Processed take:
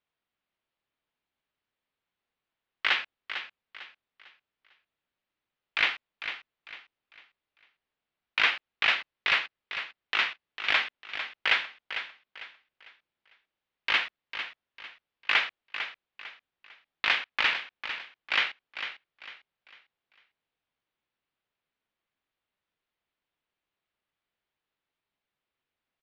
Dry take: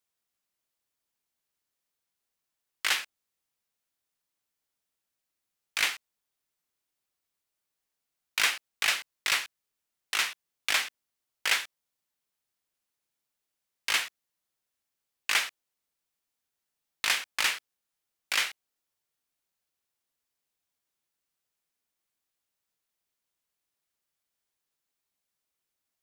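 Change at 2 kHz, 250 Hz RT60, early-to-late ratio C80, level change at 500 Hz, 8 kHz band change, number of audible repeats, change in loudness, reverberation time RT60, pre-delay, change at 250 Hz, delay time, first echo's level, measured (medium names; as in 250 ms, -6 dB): +3.5 dB, no reverb, no reverb, +3.5 dB, under -20 dB, 3, 0.0 dB, no reverb, no reverb, +3.5 dB, 450 ms, -10.0 dB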